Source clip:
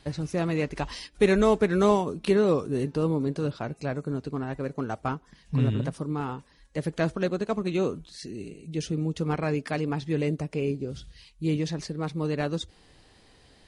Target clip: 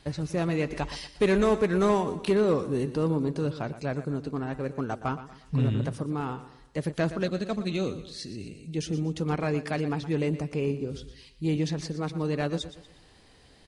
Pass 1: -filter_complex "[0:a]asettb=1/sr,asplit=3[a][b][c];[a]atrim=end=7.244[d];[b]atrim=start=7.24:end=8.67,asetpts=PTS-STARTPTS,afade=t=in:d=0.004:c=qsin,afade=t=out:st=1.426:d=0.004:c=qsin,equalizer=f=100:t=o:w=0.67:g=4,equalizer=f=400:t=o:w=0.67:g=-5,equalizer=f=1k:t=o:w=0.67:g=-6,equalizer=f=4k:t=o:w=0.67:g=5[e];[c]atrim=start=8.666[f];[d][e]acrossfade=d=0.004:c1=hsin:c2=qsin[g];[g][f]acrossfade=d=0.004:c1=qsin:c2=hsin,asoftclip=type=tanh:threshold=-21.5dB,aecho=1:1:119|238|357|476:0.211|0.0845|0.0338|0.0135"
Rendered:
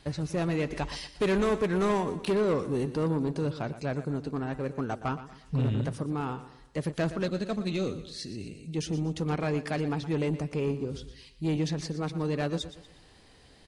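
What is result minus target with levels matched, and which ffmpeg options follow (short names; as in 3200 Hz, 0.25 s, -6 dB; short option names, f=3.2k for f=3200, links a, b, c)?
soft clip: distortion +7 dB
-filter_complex "[0:a]asettb=1/sr,asplit=3[a][b][c];[a]atrim=end=7.244[d];[b]atrim=start=7.24:end=8.67,asetpts=PTS-STARTPTS,afade=t=in:d=0.004:c=qsin,afade=t=out:st=1.426:d=0.004:c=qsin,equalizer=f=100:t=o:w=0.67:g=4,equalizer=f=400:t=o:w=0.67:g=-5,equalizer=f=1k:t=o:w=0.67:g=-6,equalizer=f=4k:t=o:w=0.67:g=5[e];[c]atrim=start=8.666[f];[d][e]acrossfade=d=0.004:c1=hsin:c2=qsin[g];[g][f]acrossfade=d=0.004:c1=qsin:c2=hsin,asoftclip=type=tanh:threshold=-15dB,aecho=1:1:119|238|357|476:0.211|0.0845|0.0338|0.0135"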